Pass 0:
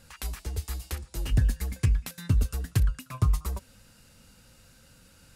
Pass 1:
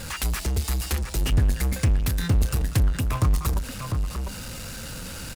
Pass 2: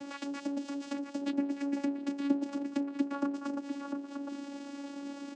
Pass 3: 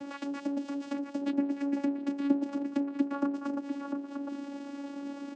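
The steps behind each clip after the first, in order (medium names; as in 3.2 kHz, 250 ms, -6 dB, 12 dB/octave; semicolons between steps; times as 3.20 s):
echo from a far wall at 120 m, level -11 dB; power-law waveshaper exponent 0.5
peaking EQ 360 Hz +6 dB 1.5 oct; vocoder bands 8, saw 281 Hz; trim -6 dB
treble shelf 3 kHz -8.5 dB; trim +2.5 dB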